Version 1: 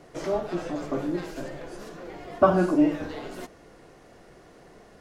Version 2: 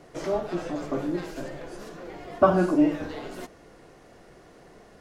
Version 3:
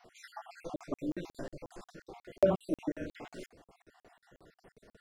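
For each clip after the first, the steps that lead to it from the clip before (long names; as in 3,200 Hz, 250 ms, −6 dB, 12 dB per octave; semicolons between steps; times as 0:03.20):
no processing that can be heard
time-frequency cells dropped at random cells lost 51%; regular buffer underruns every 0.18 s, samples 2,048, zero, from 0:00.76; level −5.5 dB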